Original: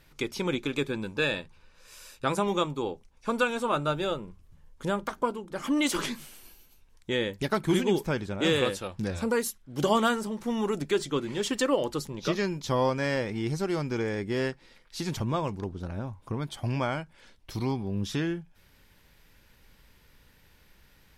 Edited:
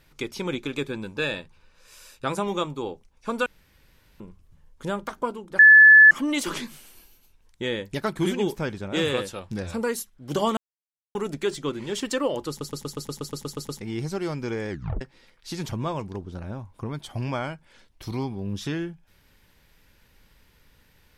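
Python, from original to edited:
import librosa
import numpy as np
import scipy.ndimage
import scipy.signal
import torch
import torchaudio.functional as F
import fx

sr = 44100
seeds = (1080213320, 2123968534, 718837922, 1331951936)

y = fx.edit(x, sr, fx.room_tone_fill(start_s=3.46, length_s=0.74),
    fx.insert_tone(at_s=5.59, length_s=0.52, hz=1730.0, db=-7.5),
    fx.silence(start_s=10.05, length_s=0.58),
    fx.stutter_over(start_s=11.97, slice_s=0.12, count=11),
    fx.tape_stop(start_s=14.18, length_s=0.31), tone=tone)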